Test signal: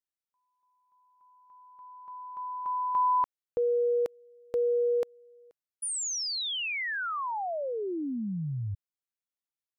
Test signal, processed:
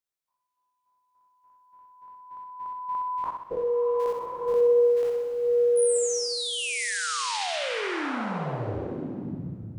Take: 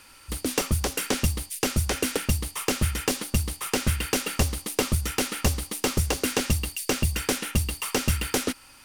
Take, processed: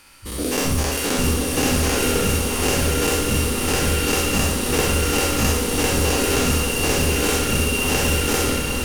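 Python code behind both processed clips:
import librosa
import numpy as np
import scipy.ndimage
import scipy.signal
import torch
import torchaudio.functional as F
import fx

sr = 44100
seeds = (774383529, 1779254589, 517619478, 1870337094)

y = fx.spec_dilate(x, sr, span_ms=120)
y = fx.room_flutter(y, sr, wall_m=11.1, rt60_s=0.7)
y = fx.rev_bloom(y, sr, seeds[0], attack_ms=1070, drr_db=1.5)
y = y * 10.0 ** (-3.5 / 20.0)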